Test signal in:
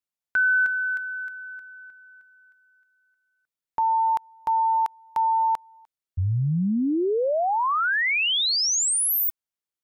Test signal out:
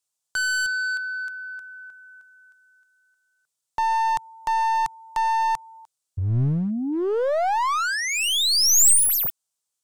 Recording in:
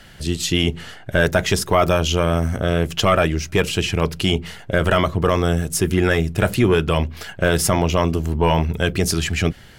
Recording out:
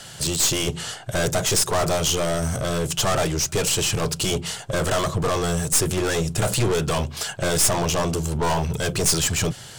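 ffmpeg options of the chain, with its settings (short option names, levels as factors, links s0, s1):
-filter_complex "[0:a]asplit=2[s0][s1];[s1]highpass=f=720:p=1,volume=11.2,asoftclip=type=tanh:threshold=0.531[s2];[s0][s2]amix=inputs=2:normalize=0,lowpass=f=6400:p=1,volume=0.501,equalizer=f=125:t=o:w=1:g=11,equalizer=f=250:t=o:w=1:g=-5,equalizer=f=2000:t=o:w=1:g=-10,equalizer=f=8000:t=o:w=1:g=11,aeval=exprs='clip(val(0),-1,0.158)':c=same,volume=0.501"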